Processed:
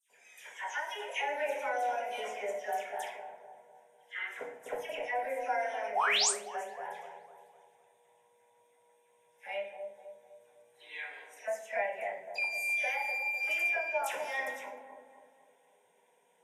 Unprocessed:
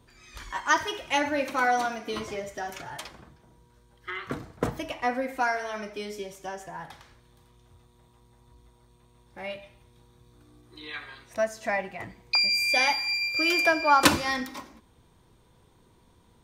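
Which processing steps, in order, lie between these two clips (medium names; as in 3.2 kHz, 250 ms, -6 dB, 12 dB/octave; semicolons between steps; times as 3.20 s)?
high-pass 320 Hz 24 dB/octave; compression 16:1, threshold -27 dBFS, peak gain reduction 14.5 dB; static phaser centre 1.2 kHz, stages 6; phase dispersion lows, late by 103 ms, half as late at 2.3 kHz; painted sound rise, 5.95–6.31 s, 660–9500 Hz -27 dBFS; on a send: feedback echo behind a low-pass 252 ms, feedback 46%, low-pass 770 Hz, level -4.5 dB; on the sum: simulated room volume 37 m³, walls mixed, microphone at 0.44 m; trim -2.5 dB; Vorbis 48 kbps 32 kHz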